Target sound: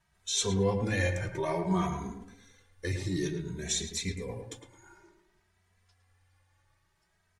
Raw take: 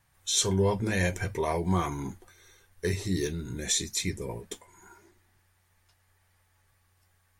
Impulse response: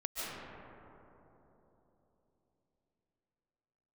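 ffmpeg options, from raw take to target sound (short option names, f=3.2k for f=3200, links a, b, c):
-filter_complex "[0:a]lowpass=8.3k,asplit=2[a][b];[b]adelay=109,lowpass=f=2k:p=1,volume=-6dB,asplit=2[c][d];[d]adelay=109,lowpass=f=2k:p=1,volume=0.39,asplit=2[e][f];[f]adelay=109,lowpass=f=2k:p=1,volume=0.39,asplit=2[g][h];[h]adelay=109,lowpass=f=2k:p=1,volume=0.39,asplit=2[i][j];[j]adelay=109,lowpass=f=2k:p=1,volume=0.39[k];[c][e][g][i][k]amix=inputs=5:normalize=0[l];[a][l]amix=inputs=2:normalize=0,asplit=2[m][n];[n]adelay=2.7,afreqshift=0.56[o];[m][o]amix=inputs=2:normalize=1"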